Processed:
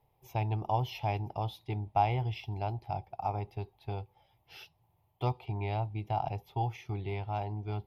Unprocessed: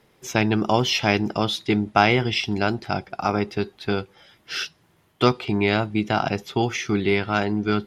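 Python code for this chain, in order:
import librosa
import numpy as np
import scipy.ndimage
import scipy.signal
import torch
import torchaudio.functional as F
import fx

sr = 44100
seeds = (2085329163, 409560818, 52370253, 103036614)

y = fx.curve_eq(x, sr, hz=(120.0, 210.0, 550.0, 850.0, 1500.0, 2400.0, 7800.0, 13000.0), db=(0, -19, -11, 0, -27, -14, -25, -4))
y = y * librosa.db_to_amplitude(-4.5)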